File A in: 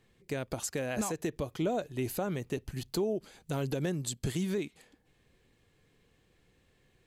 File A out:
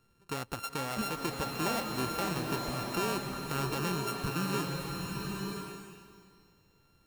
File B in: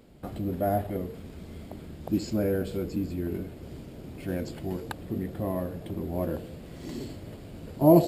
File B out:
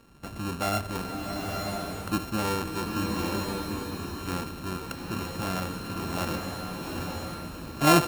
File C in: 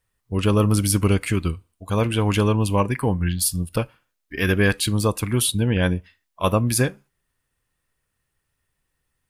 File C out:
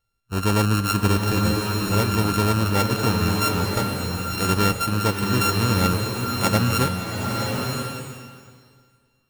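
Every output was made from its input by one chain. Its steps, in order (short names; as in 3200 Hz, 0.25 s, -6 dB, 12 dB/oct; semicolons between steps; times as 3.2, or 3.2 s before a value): sample sorter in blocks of 32 samples; bloom reverb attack 0.99 s, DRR 1 dB; gain -2 dB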